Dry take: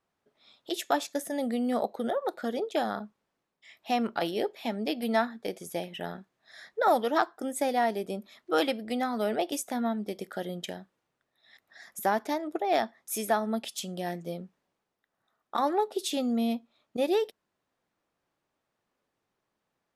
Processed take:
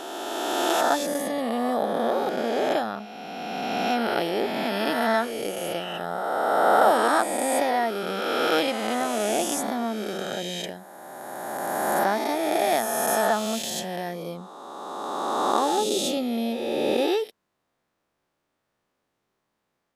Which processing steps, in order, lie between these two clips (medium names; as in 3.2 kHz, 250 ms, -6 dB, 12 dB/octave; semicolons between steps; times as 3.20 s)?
reverse spectral sustain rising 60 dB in 2.82 s